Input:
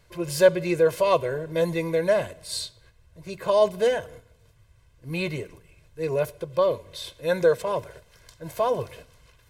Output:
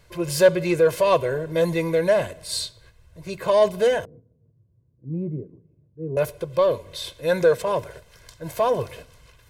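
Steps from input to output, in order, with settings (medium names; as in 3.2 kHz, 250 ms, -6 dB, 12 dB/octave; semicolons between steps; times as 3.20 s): in parallel at -5 dB: saturation -21 dBFS, distortion -9 dB; 4.05–6.17 s: on the sum: Butterworth band-pass 200 Hz, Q 0.89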